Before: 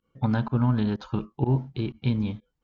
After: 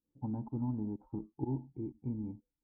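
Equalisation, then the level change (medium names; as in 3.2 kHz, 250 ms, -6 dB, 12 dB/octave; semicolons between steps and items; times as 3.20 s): cascade formant filter u; peaking EQ 260 Hz -6.5 dB 2.4 oct; treble shelf 2.1 kHz -11 dB; +2.5 dB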